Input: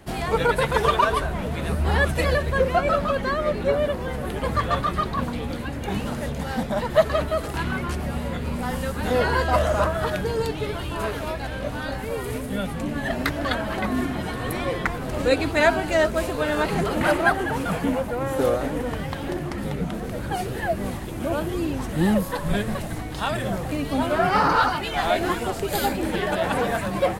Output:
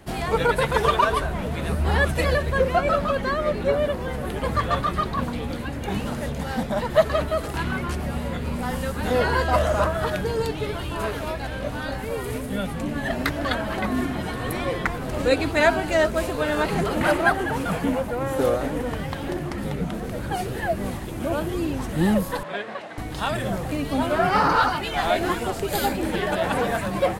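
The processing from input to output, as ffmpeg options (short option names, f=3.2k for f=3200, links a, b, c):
-filter_complex "[0:a]asettb=1/sr,asplit=3[a][b][c];[a]atrim=end=22.434[d];[b]atrim=start=22.43:end=22.98,asetpts=PTS-STARTPTS,afade=t=in:d=0.004:c=qsin,afade=t=out:st=0.546:d=0.004:c=qsin,highpass=490,lowpass=3.3k[e];[c]atrim=start=22.976[f];[d][e]acrossfade=d=0.004:c1=hsin:c2=qsin[g];[g][f]acrossfade=d=0.004:c1=qsin:c2=hsin"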